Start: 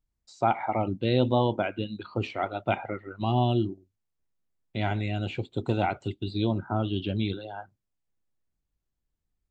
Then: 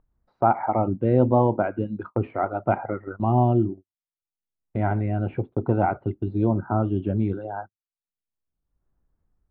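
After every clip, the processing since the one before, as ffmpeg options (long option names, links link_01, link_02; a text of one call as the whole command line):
ffmpeg -i in.wav -filter_complex "[0:a]agate=range=-42dB:threshold=-41dB:ratio=16:detection=peak,lowpass=frequency=1500:width=0.5412,lowpass=frequency=1500:width=1.3066,asplit=2[link_01][link_02];[link_02]acompressor=mode=upward:threshold=-26dB:ratio=2.5,volume=-2.5dB[link_03];[link_01][link_03]amix=inputs=2:normalize=0" out.wav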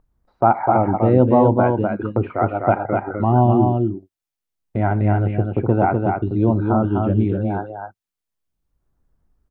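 ffmpeg -i in.wav -af "aecho=1:1:251:0.631,volume=4.5dB" out.wav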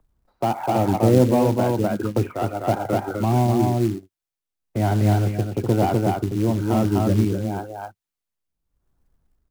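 ffmpeg -i in.wav -filter_complex "[0:a]tremolo=f=1:d=0.38,acrossover=split=110|260|670[link_01][link_02][link_03][link_04];[link_04]asoftclip=type=tanh:threshold=-27dB[link_05];[link_01][link_02][link_03][link_05]amix=inputs=4:normalize=0,acrusher=bits=5:mode=log:mix=0:aa=0.000001" out.wav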